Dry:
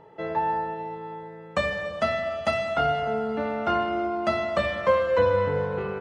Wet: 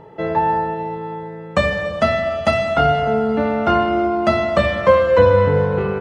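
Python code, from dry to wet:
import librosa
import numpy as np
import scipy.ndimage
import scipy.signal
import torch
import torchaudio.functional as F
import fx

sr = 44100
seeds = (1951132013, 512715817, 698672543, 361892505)

y = fx.low_shelf(x, sr, hz=320.0, db=6.5)
y = y * 10.0 ** (7.0 / 20.0)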